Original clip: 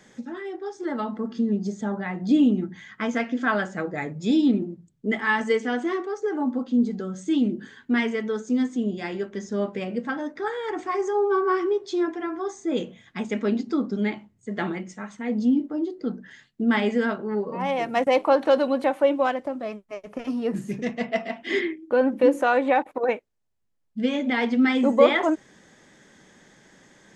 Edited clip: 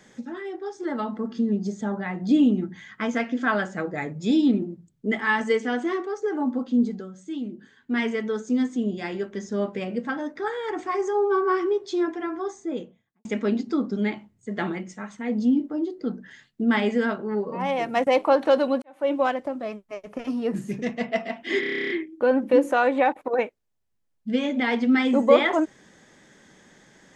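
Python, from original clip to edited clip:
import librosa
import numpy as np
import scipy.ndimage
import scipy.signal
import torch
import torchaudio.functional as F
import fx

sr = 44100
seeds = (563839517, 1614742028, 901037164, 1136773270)

y = fx.studio_fade_out(x, sr, start_s=12.34, length_s=0.91)
y = fx.edit(y, sr, fx.fade_down_up(start_s=6.85, length_s=1.21, db=-9.5, fade_s=0.26),
    fx.fade_in_span(start_s=18.82, length_s=0.31, curve='qua'),
    fx.stutter(start_s=21.6, slice_s=0.03, count=11), tone=tone)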